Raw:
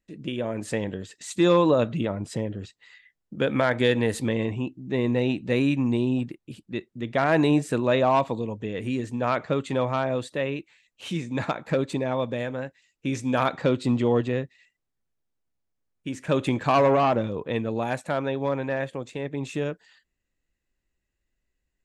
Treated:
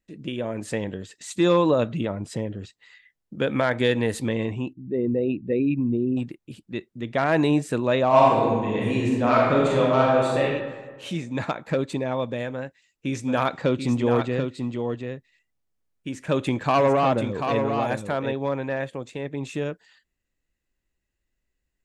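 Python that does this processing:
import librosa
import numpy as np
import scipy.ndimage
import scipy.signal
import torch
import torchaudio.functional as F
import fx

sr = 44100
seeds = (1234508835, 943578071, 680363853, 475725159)

y = fx.envelope_sharpen(x, sr, power=2.0, at=(4.73, 6.17))
y = fx.reverb_throw(y, sr, start_s=8.07, length_s=2.34, rt60_s=1.5, drr_db=-5.0)
y = fx.echo_single(y, sr, ms=737, db=-6.0, at=(13.25, 18.32), fade=0.02)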